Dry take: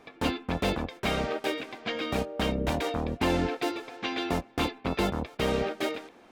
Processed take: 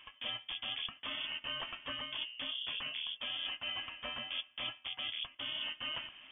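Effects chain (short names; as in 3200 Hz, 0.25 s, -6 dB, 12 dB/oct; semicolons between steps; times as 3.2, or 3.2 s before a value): reverse; compressor 12:1, threshold -37 dBFS, peak gain reduction 16 dB; reverse; inverted band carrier 3400 Hz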